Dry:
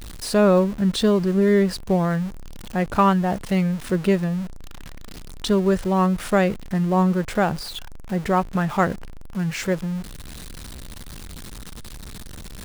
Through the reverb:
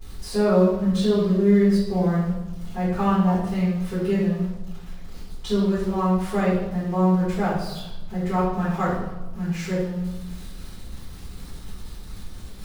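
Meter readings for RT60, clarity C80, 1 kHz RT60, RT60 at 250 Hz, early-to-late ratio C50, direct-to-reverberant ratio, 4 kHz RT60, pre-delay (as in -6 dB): 1.0 s, 4.0 dB, 0.95 s, 1.3 s, 1.0 dB, -13.0 dB, 0.80 s, 3 ms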